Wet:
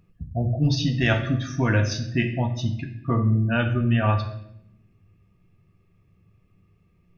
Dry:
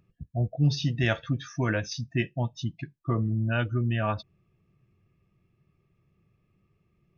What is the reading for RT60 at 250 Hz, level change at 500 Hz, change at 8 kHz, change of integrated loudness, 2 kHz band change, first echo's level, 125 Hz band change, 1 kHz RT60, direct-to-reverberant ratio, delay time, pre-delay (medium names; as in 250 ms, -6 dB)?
1.2 s, +4.5 dB, no reading, +5.0 dB, +5.0 dB, no echo, +5.0 dB, 0.65 s, 4.0 dB, no echo, 4 ms